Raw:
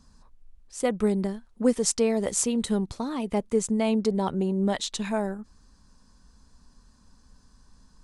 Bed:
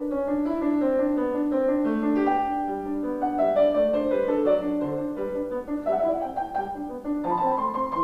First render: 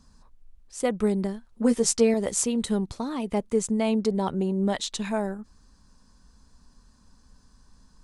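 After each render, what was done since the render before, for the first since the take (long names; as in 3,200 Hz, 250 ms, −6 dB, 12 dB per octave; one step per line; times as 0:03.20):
0:01.51–0:02.14: double-tracking delay 13 ms −4 dB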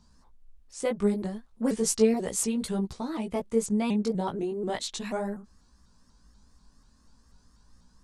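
chorus effect 0.37 Hz, delay 16 ms, depth 3.1 ms
pitch modulation by a square or saw wave saw up 4.1 Hz, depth 160 cents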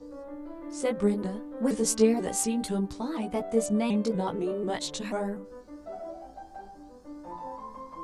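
mix in bed −16 dB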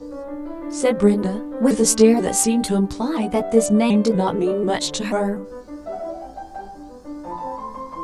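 level +10 dB
brickwall limiter −2 dBFS, peak gain reduction 2 dB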